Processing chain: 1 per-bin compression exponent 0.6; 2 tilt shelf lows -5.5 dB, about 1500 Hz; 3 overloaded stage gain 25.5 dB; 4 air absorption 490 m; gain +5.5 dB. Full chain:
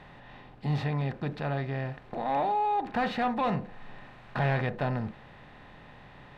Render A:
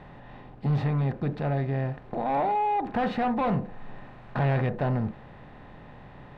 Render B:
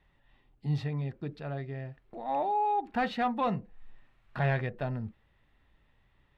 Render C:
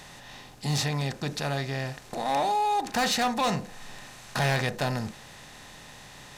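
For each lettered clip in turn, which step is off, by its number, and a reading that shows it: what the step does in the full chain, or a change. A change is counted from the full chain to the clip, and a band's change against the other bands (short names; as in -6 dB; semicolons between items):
2, crest factor change -3.0 dB; 1, crest factor change +2.0 dB; 4, 4 kHz band +12.0 dB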